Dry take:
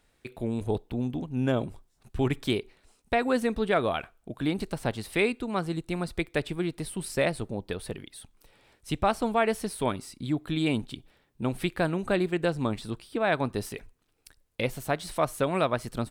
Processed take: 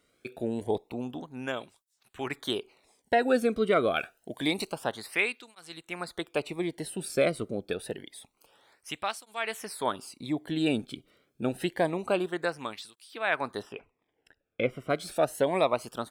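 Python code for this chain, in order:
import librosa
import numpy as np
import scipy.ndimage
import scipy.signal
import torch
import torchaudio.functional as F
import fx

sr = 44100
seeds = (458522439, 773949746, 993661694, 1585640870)

y = fx.high_shelf(x, sr, hz=2100.0, db=10.0, at=(3.96, 4.71))
y = fx.savgol(y, sr, points=25, at=(13.61, 14.89), fade=0.02)
y = fx.flanger_cancel(y, sr, hz=0.27, depth_ms=1.2)
y = y * librosa.db_to_amplitude(2.5)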